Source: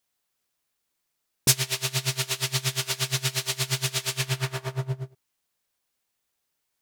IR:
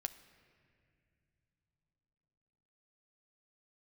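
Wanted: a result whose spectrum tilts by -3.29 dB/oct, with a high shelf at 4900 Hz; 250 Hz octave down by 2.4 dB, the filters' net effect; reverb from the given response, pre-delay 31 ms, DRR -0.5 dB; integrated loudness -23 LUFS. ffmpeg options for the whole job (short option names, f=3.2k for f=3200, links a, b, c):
-filter_complex "[0:a]equalizer=f=250:t=o:g=-8,highshelf=f=4.9k:g=-5,asplit=2[a][b];[1:a]atrim=start_sample=2205,adelay=31[c];[b][c]afir=irnorm=-1:irlink=0,volume=2.5dB[d];[a][d]amix=inputs=2:normalize=0,volume=2dB"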